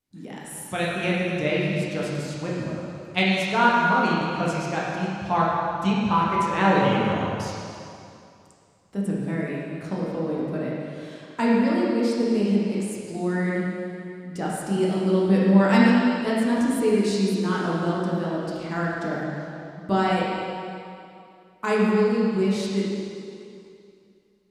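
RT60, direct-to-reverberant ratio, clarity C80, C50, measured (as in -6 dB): 2.5 s, -6.0 dB, -0.5 dB, -2.5 dB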